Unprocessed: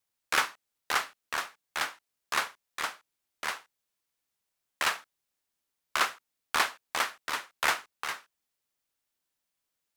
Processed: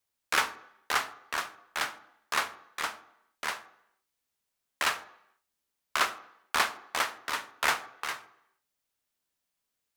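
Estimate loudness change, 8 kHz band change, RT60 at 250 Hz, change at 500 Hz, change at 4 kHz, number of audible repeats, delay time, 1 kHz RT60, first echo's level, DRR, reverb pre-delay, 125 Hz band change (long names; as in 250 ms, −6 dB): 0.0 dB, 0.0 dB, 0.65 s, +1.0 dB, 0.0 dB, no echo audible, no echo audible, 0.80 s, no echo audible, 12.0 dB, 3 ms, +1.0 dB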